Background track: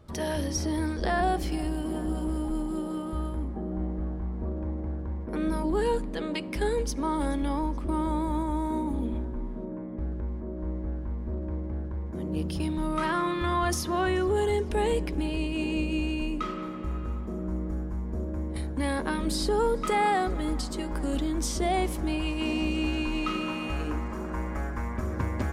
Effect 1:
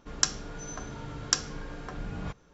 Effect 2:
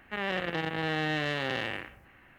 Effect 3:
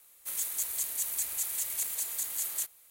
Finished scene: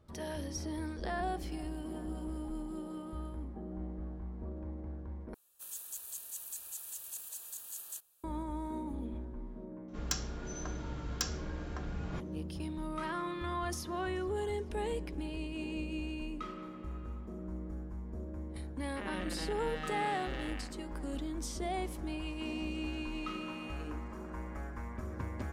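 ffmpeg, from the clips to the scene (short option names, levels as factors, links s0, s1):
-filter_complex "[0:a]volume=0.316[s0];[3:a]asuperstop=centerf=2100:order=4:qfactor=3.4[s1];[1:a]asoftclip=type=tanh:threshold=0.112[s2];[s0]asplit=2[s3][s4];[s3]atrim=end=5.344[s5];[s1]atrim=end=2.9,asetpts=PTS-STARTPTS,volume=0.282[s6];[s4]atrim=start=8.236[s7];[s2]atrim=end=2.53,asetpts=PTS-STARTPTS,volume=0.631,afade=t=in:d=0.004:c=hsin,afade=t=out:st=2.526:d=0.004:c=hsin,adelay=9880[s8];[2:a]atrim=end=2.38,asetpts=PTS-STARTPTS,volume=0.251,afade=t=in:d=0.004:c=hsin,afade=t=out:st=2.376:d=0.004:c=hsin,adelay=18840[s9];[s5][s6]acrossfade=d=0.004:c1=hsin:c2=hsin[s10];[s10][s7]acrossfade=d=0.004:c1=hsin:c2=hsin[s11];[s11][s8][s9]amix=inputs=3:normalize=0"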